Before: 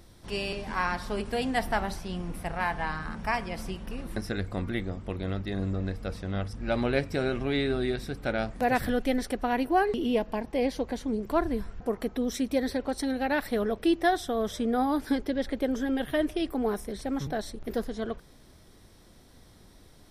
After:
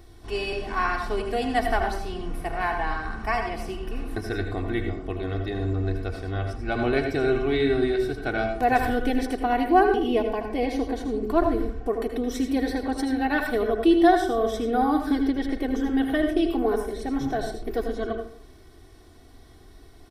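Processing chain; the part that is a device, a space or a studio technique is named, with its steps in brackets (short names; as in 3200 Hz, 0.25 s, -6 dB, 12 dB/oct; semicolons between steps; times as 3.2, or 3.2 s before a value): microphone above a desk (comb 2.7 ms, depth 73%; reverb RT60 0.50 s, pre-delay 73 ms, DRR 5 dB); bell 8700 Hz -5 dB 2.5 oct; gain +1.5 dB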